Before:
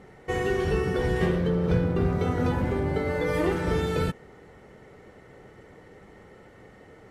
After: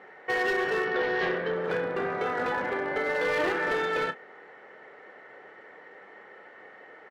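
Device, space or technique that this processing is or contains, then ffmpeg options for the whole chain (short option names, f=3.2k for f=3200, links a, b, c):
megaphone: -filter_complex "[0:a]highpass=560,lowpass=2.8k,equalizer=f=1.7k:t=o:w=0.35:g=7,asoftclip=type=hard:threshold=-26.5dB,asplit=2[a][b];[b]adelay=30,volume=-11dB[c];[a][c]amix=inputs=2:normalize=0,asettb=1/sr,asplit=3[d][e][f];[d]atrim=end=0.854[g];[e]atrim=start=0.85:end=1.55,asetpts=PTS-STARTPTS,afade=t=in:d=0.004:c=qsin,afade=t=out:st=0.696:d=0.004:c=qsin,lowpass=f=5.1k:w=0.5412,lowpass=f=5.1k:w=1.3066[h];[f]atrim=start=1.546[i];[g][h]acrossfade=d=0.004:c1=hsin:c2=qsin[j];[j][i]acrossfade=d=0.004:c1=qsin:c2=hsin,volume=4dB"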